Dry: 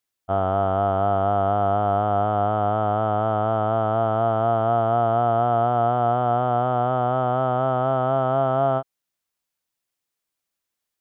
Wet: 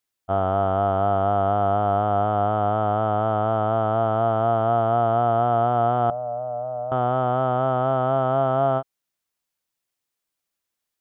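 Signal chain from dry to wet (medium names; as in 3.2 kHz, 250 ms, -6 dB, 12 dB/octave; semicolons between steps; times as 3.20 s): 6.10–6.92 s: two resonant band-passes 320 Hz, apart 1.8 oct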